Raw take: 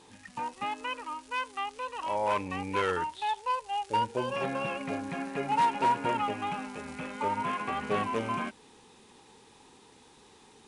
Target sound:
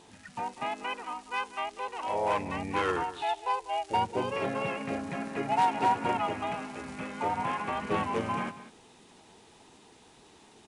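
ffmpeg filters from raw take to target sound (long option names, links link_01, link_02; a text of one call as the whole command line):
ffmpeg -i in.wav -filter_complex "[0:a]asplit=2[link_01][link_02];[link_02]asetrate=35002,aresample=44100,atempo=1.25992,volume=-5dB[link_03];[link_01][link_03]amix=inputs=2:normalize=0,asplit=2[link_04][link_05];[link_05]aecho=0:1:194:0.178[link_06];[link_04][link_06]amix=inputs=2:normalize=0,volume=-1dB" out.wav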